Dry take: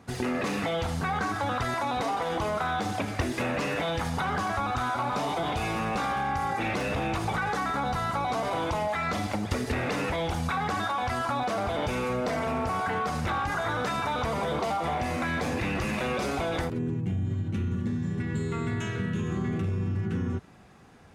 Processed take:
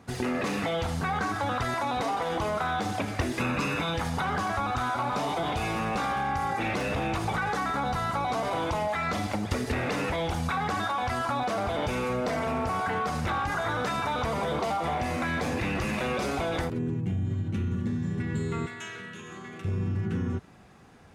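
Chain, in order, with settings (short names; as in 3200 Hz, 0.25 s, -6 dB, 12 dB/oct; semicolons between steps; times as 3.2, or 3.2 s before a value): 3.4–3.94 comb 0.8 ms, depth 55%; 18.66–19.65 HPF 1200 Hz 6 dB/oct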